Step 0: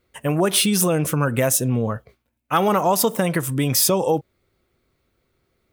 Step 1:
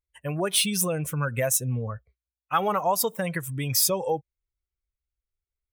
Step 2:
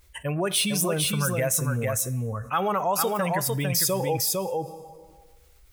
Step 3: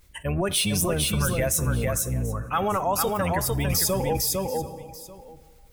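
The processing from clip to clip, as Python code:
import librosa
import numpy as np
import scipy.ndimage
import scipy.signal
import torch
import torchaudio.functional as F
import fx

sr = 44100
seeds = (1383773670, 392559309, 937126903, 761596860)

y1 = fx.bin_expand(x, sr, power=1.5)
y1 = fx.peak_eq(y1, sr, hz=270.0, db=-9.5, octaves=1.1)
y1 = y1 * 10.0 ** (-2.0 / 20.0)
y2 = y1 + 10.0 ** (-4.5 / 20.0) * np.pad(y1, (int(453 * sr / 1000.0), 0))[:len(y1)]
y2 = fx.rev_plate(y2, sr, seeds[0], rt60_s=0.98, hf_ratio=0.85, predelay_ms=0, drr_db=18.5)
y2 = fx.env_flatten(y2, sr, amount_pct=50)
y2 = y2 * 10.0 ** (-2.5 / 20.0)
y3 = fx.octave_divider(y2, sr, octaves=1, level_db=-2.0)
y3 = y3 + 10.0 ** (-17.5 / 20.0) * np.pad(y3, (int(737 * sr / 1000.0), 0))[:len(y3)]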